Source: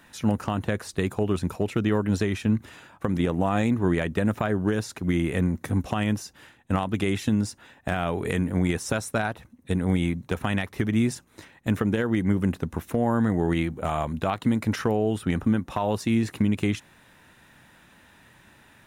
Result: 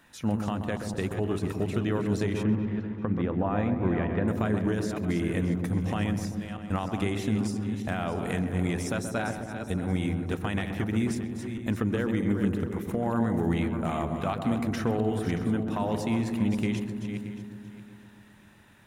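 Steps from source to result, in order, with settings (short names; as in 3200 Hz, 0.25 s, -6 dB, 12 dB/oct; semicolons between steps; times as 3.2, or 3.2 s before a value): regenerating reverse delay 0.313 s, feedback 43%, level -8 dB; 2.43–4.28 LPF 2200 Hz 12 dB/oct; darkening echo 0.13 s, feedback 76%, low-pass 930 Hz, level -6 dB; gain -5 dB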